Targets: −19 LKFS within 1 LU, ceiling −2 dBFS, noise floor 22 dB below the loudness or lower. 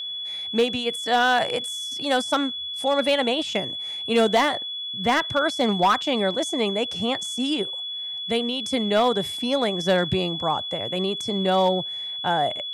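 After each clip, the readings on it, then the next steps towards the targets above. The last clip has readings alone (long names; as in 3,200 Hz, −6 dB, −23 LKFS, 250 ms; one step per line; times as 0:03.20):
share of clipped samples 0.5%; peaks flattened at −13.0 dBFS; interfering tone 3,400 Hz; level of the tone −29 dBFS; integrated loudness −23.5 LKFS; sample peak −13.0 dBFS; target loudness −19.0 LKFS
→ clipped peaks rebuilt −13 dBFS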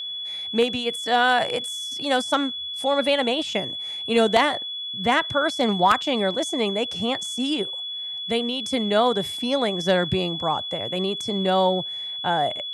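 share of clipped samples 0.0%; interfering tone 3,400 Hz; level of the tone −29 dBFS
→ notch filter 3,400 Hz, Q 30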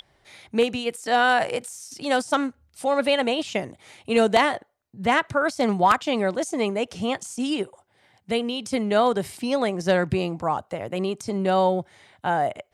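interfering tone none found; integrated loudness −24.0 LKFS; sample peak −3.5 dBFS; target loudness −19.0 LKFS
→ level +5 dB
brickwall limiter −2 dBFS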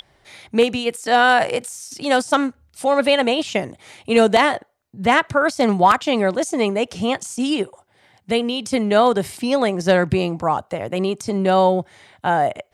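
integrated loudness −19.0 LKFS; sample peak −2.0 dBFS; background noise floor −59 dBFS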